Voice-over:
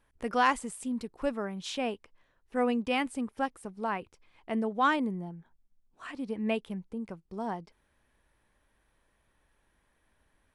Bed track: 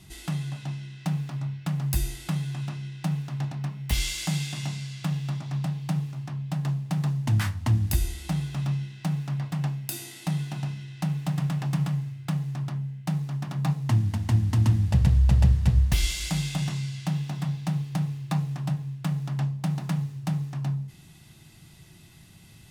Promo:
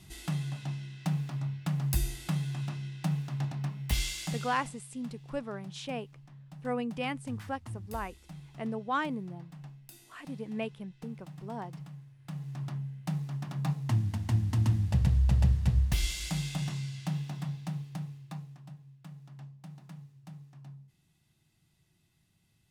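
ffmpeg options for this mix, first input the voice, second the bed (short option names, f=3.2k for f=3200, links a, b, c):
-filter_complex "[0:a]adelay=4100,volume=-5dB[a];[1:a]volume=10.5dB,afade=t=out:st=3.85:d=0.91:silence=0.158489,afade=t=in:st=12.17:d=0.51:silence=0.211349,afade=t=out:st=17.16:d=1.46:silence=0.188365[b];[a][b]amix=inputs=2:normalize=0"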